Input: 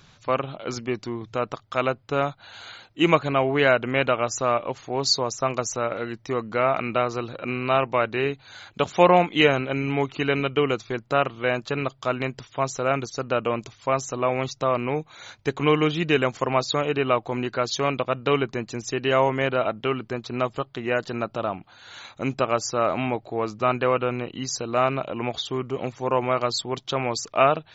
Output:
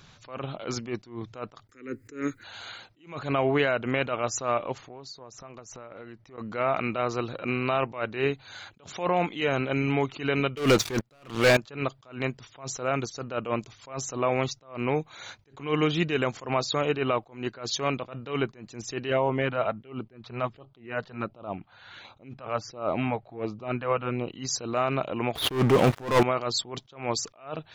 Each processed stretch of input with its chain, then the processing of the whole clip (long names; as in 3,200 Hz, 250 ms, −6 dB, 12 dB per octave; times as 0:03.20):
0:01.69–0:02.44: drawn EQ curve 110 Hz 0 dB, 170 Hz −10 dB, 260 Hz +11 dB, 470 Hz +5 dB, 680 Hz −28 dB, 1,300 Hz −5 dB, 1,900 Hz +10 dB, 3,300 Hz −14 dB, 7,200 Hz +14 dB, 11,000 Hz +12 dB + upward compression, threshold −30 dBFS
0:04.78–0:06.38: high-shelf EQ 4,700 Hz −11.5 dB + downward compressor 12 to 1, threshold −39 dBFS
0:10.57–0:11.57: high-shelf EQ 3,900 Hz +7.5 dB + leveller curve on the samples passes 5
0:19.10–0:24.28: auto-filter notch sine 1.4 Hz 280–1,900 Hz + high-frequency loss of the air 220 metres
0:25.35–0:26.23: running median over 9 samples + leveller curve on the samples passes 5
whole clip: brickwall limiter −14 dBFS; level that may rise only so fast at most 150 dB per second